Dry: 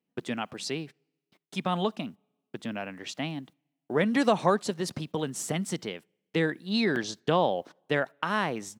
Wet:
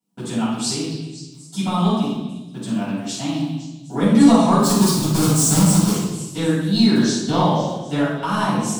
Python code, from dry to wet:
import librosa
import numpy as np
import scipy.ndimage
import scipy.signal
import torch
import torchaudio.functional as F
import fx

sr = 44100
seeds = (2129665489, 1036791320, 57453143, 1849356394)

p1 = fx.halfwave_hold(x, sr, at=(4.58, 5.92))
p2 = fx.graphic_eq_10(p1, sr, hz=(125, 250, 500, 1000, 2000, 4000, 8000), db=(7, 7, -3, 9, -8, 5, 11))
p3 = np.clip(10.0 ** (17.0 / 20.0) * p2, -1.0, 1.0) / 10.0 ** (17.0 / 20.0)
p4 = p2 + (p3 * librosa.db_to_amplitude(-11.5))
p5 = fx.high_shelf(p4, sr, hz=7500.0, db=11.5)
p6 = fx.echo_stepped(p5, sr, ms=254, hz=3400.0, octaves=0.7, feedback_pct=70, wet_db=-11.5)
p7 = fx.room_shoebox(p6, sr, seeds[0], volume_m3=500.0, walls='mixed', distance_m=7.5)
y = p7 * librosa.db_to_amplitude(-14.0)